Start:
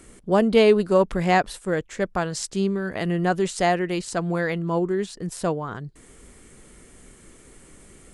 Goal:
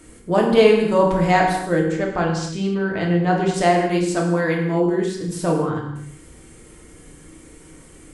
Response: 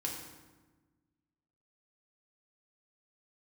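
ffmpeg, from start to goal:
-filter_complex "[0:a]asettb=1/sr,asplit=3[s0][s1][s2];[s0]atrim=end=1.924[s3];[s1]atrim=start=1.92:end=3.54,asetpts=PTS-STARTPTS,afade=t=in:d=0.004:c=qsin,afade=t=out:st=1.616:d=0.004:c=qsin,lowpass=5000[s4];[s2]atrim=start=3.536[s5];[s3][s4]acrossfade=d=0.004:c1=hsin:c2=qsin[s6];[s6][s5]acrossfade=d=0.004:c1=qsin:c2=hsin[s7];[1:a]atrim=start_sample=2205,afade=t=out:st=0.34:d=0.01,atrim=end_sample=15435[s8];[s7][s8]afir=irnorm=-1:irlink=0,volume=1.26"

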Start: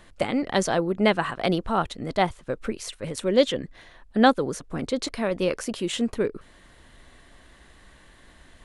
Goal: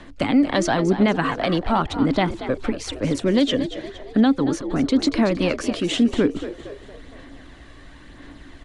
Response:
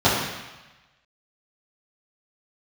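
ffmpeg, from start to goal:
-filter_complex "[0:a]aphaser=in_gain=1:out_gain=1:delay=1.8:decay=0.36:speed=0.97:type=sinusoidal,acrossover=split=330|570|1500[s0][s1][s2][s3];[s1]acompressor=threshold=0.0126:ratio=6[s4];[s0][s4][s2][s3]amix=inputs=4:normalize=0,equalizer=f=280:t=o:w=0.3:g=14,alimiter=limit=0.188:level=0:latency=1:release=111,lowpass=6300,asplit=6[s5][s6][s7][s8][s9][s10];[s6]adelay=232,afreqshift=58,volume=0.251[s11];[s7]adelay=464,afreqshift=116,volume=0.114[s12];[s8]adelay=696,afreqshift=174,volume=0.0507[s13];[s9]adelay=928,afreqshift=232,volume=0.0229[s14];[s10]adelay=1160,afreqshift=290,volume=0.0104[s15];[s5][s11][s12][s13][s14][s15]amix=inputs=6:normalize=0,volume=1.78"

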